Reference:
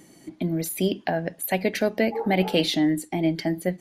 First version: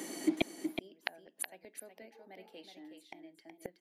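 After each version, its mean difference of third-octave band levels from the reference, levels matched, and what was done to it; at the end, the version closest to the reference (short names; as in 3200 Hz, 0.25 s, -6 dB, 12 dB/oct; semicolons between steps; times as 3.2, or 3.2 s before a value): 12.0 dB: HPF 250 Hz 24 dB/oct; flipped gate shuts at -25 dBFS, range -40 dB; on a send: echo 0.371 s -7 dB; on the sum: gain +10 dB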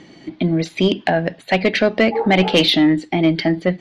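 3.5 dB: LPF 4000 Hz 24 dB/oct; high shelf 2800 Hz +8.5 dB; soft clip -13.5 dBFS, distortion -18 dB; gain +8.5 dB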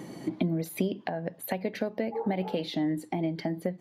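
4.5 dB: ten-band EQ 125 Hz +8 dB, 250 Hz -5 dB, 500 Hz +8 dB, 1000 Hz +10 dB, 2000 Hz +3 dB, 4000 Hz +5 dB, 8000 Hz -4 dB; compressor 6:1, threshold -34 dBFS, peak gain reduction 22 dB; bell 230 Hz +12.5 dB 1.3 oct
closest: second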